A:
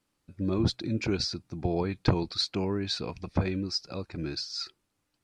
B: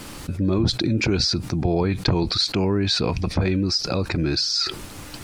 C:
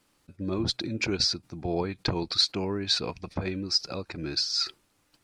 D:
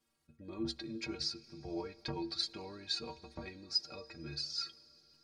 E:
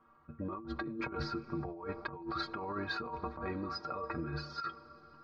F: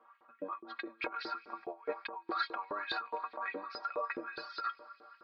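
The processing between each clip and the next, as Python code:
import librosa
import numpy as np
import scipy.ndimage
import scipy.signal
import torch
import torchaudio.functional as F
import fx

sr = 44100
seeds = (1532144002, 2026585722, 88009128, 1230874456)

y1 = fx.low_shelf(x, sr, hz=110.0, db=4.5)
y1 = fx.env_flatten(y1, sr, amount_pct=70)
y2 = fx.low_shelf(y1, sr, hz=220.0, db=-7.5)
y2 = fx.upward_expand(y2, sr, threshold_db=-39.0, expansion=2.5)
y3 = fx.stiff_resonator(y2, sr, f0_hz=69.0, decay_s=0.36, stiffness=0.03)
y3 = fx.rev_freeverb(y3, sr, rt60_s=4.7, hf_ratio=0.95, predelay_ms=20, drr_db=19.5)
y3 = y3 * librosa.db_to_amplitude(-3.5)
y4 = fx.lowpass_res(y3, sr, hz=1200.0, q=5.5)
y4 = fx.over_compress(y4, sr, threshold_db=-48.0, ratio=-1.0)
y4 = y4 * librosa.db_to_amplitude(8.5)
y5 = fx.cabinet(y4, sr, low_hz=210.0, low_slope=12, high_hz=4300.0, hz=(260.0, 400.0, 1300.0), db=(4, -5, -4))
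y5 = fx.filter_lfo_highpass(y5, sr, shape='saw_up', hz=4.8, low_hz=390.0, high_hz=3300.0, q=2.4)
y5 = y5 * librosa.db_to_amplitude(2.0)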